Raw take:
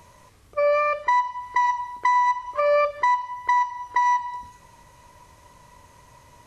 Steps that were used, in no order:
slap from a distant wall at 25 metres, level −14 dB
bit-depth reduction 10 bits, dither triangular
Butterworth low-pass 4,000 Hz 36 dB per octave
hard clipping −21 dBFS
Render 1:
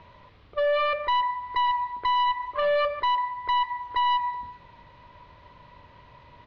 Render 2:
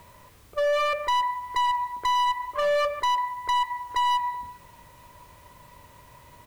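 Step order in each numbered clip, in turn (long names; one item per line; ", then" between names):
bit-depth reduction, then slap from a distant wall, then hard clipping, then Butterworth low-pass
Butterworth low-pass, then bit-depth reduction, then slap from a distant wall, then hard clipping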